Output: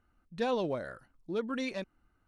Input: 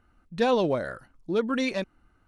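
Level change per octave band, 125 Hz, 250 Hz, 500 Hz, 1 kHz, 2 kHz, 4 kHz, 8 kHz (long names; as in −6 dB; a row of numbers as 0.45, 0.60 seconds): −8.0 dB, −8.0 dB, −8.0 dB, −8.0 dB, −8.0 dB, −8.0 dB, can't be measured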